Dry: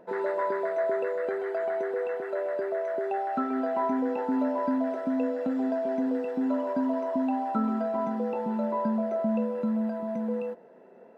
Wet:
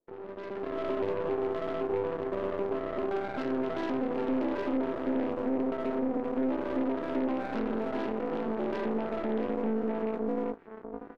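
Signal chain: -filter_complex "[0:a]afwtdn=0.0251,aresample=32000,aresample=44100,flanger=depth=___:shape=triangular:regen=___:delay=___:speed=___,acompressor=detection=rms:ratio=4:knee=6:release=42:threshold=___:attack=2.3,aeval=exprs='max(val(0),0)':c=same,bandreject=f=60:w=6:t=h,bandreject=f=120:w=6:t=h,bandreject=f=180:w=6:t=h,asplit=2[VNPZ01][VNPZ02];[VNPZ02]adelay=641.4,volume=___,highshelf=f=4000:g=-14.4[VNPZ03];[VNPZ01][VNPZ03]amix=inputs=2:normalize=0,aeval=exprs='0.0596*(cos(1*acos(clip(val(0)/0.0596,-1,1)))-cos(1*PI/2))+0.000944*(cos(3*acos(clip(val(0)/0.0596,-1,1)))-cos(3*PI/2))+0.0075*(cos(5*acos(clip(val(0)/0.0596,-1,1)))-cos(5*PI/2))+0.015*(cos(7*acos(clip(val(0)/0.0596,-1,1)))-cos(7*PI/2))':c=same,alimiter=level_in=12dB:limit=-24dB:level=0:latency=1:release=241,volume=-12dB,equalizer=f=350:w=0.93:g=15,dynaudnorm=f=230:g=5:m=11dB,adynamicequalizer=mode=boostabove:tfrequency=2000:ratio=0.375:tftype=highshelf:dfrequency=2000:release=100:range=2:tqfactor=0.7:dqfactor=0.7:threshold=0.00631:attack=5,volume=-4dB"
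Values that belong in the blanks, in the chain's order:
8.9, -60, 2.3, 1.4, -32dB, -6dB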